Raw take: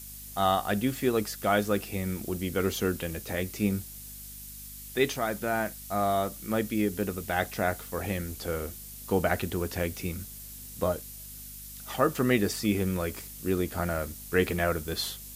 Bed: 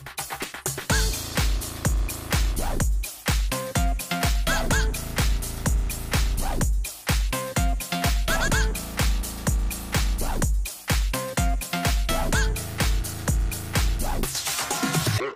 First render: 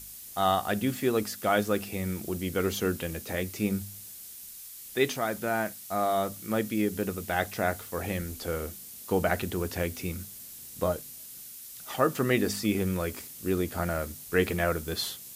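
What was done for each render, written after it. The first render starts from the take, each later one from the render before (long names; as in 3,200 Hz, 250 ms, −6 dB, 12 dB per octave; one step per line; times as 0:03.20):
hum removal 50 Hz, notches 5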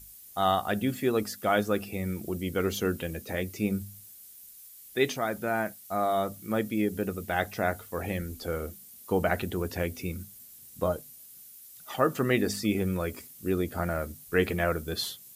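broadband denoise 9 dB, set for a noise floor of −45 dBFS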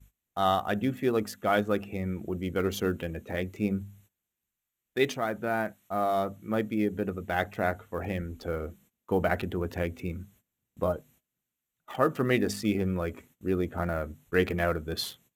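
adaptive Wiener filter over 9 samples
noise gate −57 dBFS, range −19 dB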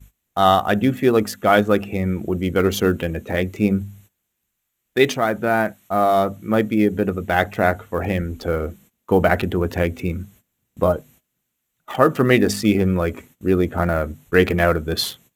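level +10.5 dB
brickwall limiter −1 dBFS, peak gain reduction 1.5 dB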